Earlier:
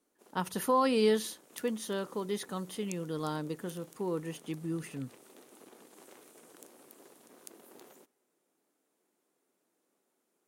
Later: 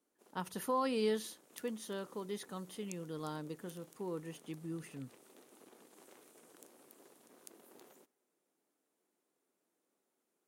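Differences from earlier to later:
speech −7.0 dB
background −5.0 dB

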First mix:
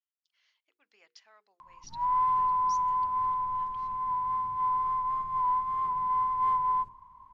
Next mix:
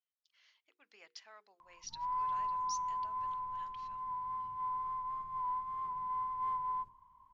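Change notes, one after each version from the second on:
speech +3.5 dB
background −9.5 dB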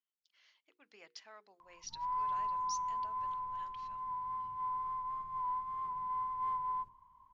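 speech: add low-shelf EQ 400 Hz +10 dB

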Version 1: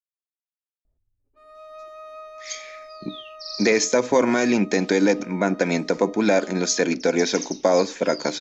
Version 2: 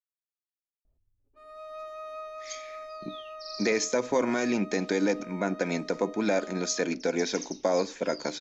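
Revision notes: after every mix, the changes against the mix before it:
speech −7.5 dB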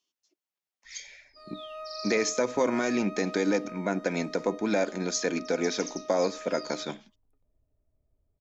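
speech: entry −1.55 s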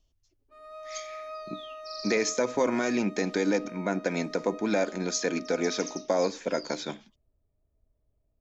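background: entry −0.85 s

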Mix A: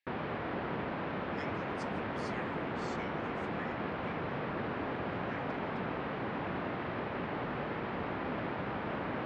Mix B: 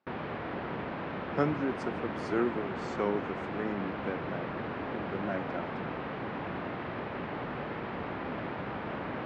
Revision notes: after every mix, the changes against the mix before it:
speech: remove linear-phase brick-wall high-pass 1,600 Hz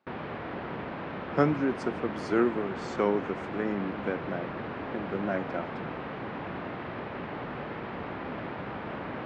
speech +4.5 dB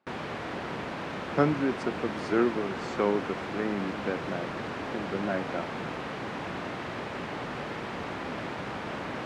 background: remove high-frequency loss of the air 340 metres

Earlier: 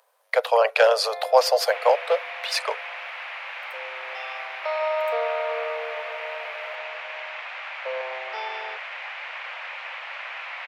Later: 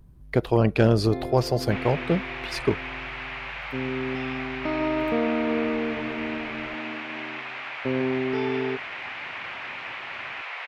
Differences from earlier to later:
speech −8.5 dB
first sound −4.0 dB
master: remove Butterworth high-pass 490 Hz 96 dB per octave

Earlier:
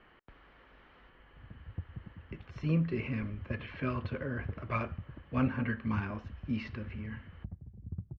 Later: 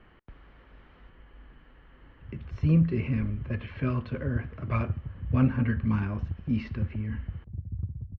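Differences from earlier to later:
background: entry +0.85 s
master: add low-shelf EQ 250 Hz +11 dB

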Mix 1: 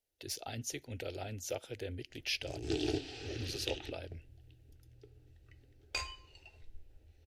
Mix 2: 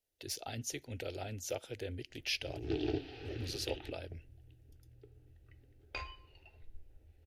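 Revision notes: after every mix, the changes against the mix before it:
background: add high-frequency loss of the air 270 metres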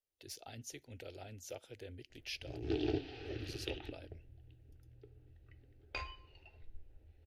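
speech −8.0 dB

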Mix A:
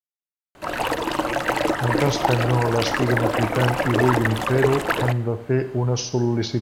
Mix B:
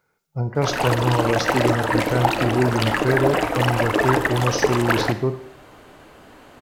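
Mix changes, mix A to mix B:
speech: entry −1.45 s
background: send +6.5 dB

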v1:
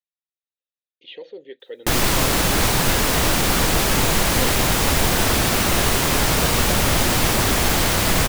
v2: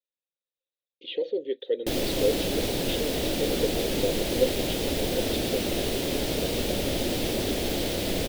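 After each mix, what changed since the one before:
background −12.0 dB
master: add drawn EQ curve 150 Hz 0 dB, 290 Hz +9 dB, 550 Hz +9 dB, 1,100 Hz −11 dB, 3,500 Hz +5 dB, 7,000 Hz −3 dB, 13,000 Hz −1 dB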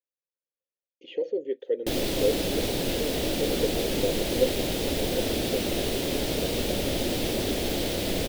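speech: remove low-pass with resonance 3,800 Hz, resonance Q 11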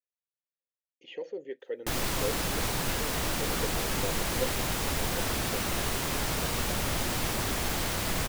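master: add drawn EQ curve 150 Hz 0 dB, 290 Hz −9 dB, 550 Hz −9 dB, 1,100 Hz +11 dB, 3,500 Hz −5 dB, 7,000 Hz +3 dB, 13,000 Hz +1 dB

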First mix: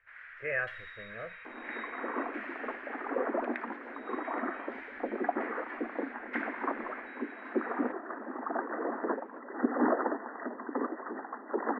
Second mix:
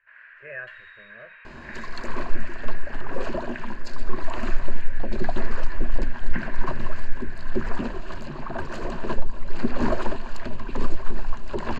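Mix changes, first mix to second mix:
speech −6.0 dB
second sound: remove linear-phase brick-wall band-pass 220–2,000 Hz
master: add EQ curve with evenly spaced ripples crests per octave 1.4, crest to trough 8 dB

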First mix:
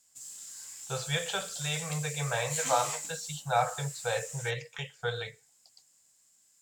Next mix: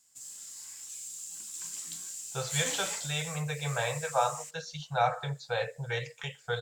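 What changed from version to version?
speech: entry +1.45 s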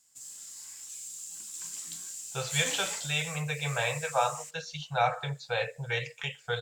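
speech: add parametric band 2,600 Hz +7 dB 0.68 octaves

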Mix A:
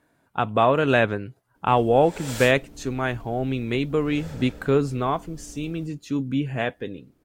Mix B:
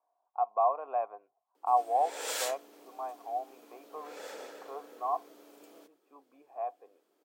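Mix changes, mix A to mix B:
speech: add formant resonators in series a
master: add high-pass filter 400 Hz 24 dB per octave

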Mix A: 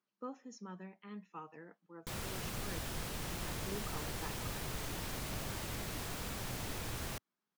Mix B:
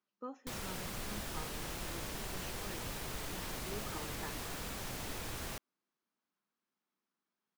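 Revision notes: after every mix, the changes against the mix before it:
background: entry −1.60 s
master: add parametric band 110 Hz −4.5 dB 1.4 octaves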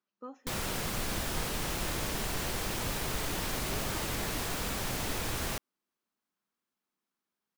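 background +8.0 dB

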